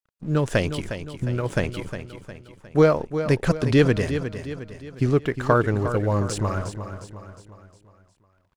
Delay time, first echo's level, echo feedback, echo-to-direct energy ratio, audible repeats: 358 ms, −10.0 dB, 47%, −9.0 dB, 4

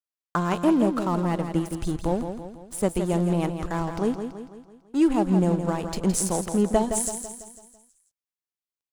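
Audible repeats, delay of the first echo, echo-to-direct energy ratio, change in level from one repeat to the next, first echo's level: 5, 166 ms, −7.0 dB, −6.0 dB, −8.0 dB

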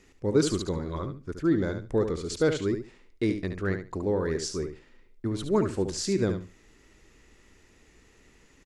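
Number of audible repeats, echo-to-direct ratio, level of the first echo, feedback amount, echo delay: 2, −8.0 dB, −8.0 dB, 18%, 72 ms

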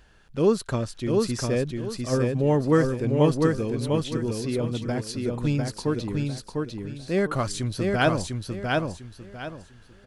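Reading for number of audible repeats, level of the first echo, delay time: 3, −3.0 dB, 700 ms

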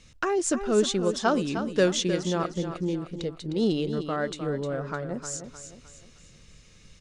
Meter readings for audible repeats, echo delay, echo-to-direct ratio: 4, 307 ms, −8.5 dB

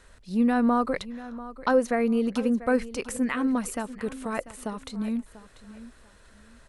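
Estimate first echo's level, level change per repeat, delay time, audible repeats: −16.0 dB, −12.0 dB, 691 ms, 2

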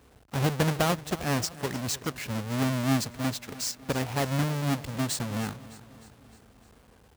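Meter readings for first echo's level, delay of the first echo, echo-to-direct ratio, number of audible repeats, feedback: −17.5 dB, 305 ms, −16.0 dB, 4, 58%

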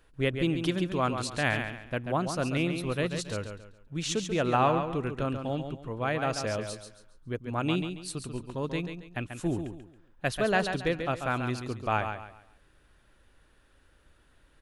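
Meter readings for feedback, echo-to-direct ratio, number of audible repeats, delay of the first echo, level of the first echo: 31%, −7.0 dB, 3, 138 ms, −7.5 dB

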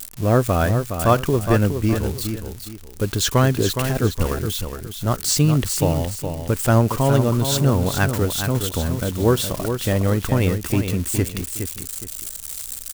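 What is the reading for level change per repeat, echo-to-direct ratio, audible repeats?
−10.0 dB, −7.0 dB, 2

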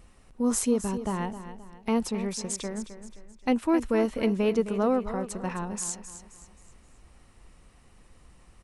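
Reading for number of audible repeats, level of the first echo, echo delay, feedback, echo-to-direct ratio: 3, −12.0 dB, 263 ms, 40%, −11.5 dB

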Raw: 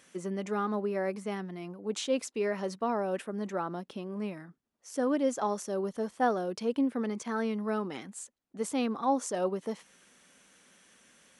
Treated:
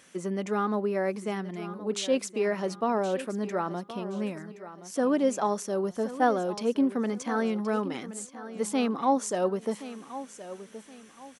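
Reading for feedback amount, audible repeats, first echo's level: 33%, 3, −14.0 dB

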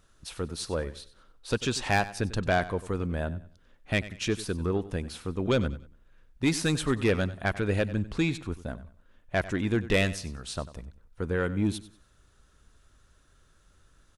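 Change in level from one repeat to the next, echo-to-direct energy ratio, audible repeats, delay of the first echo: −10.5 dB, −15.5 dB, 2, 95 ms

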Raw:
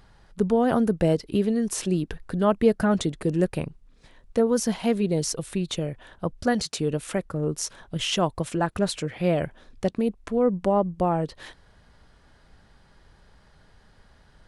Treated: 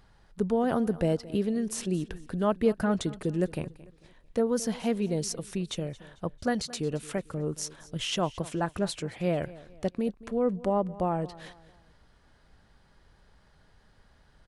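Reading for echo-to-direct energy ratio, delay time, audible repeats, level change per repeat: −18.5 dB, 223 ms, 2, −8.5 dB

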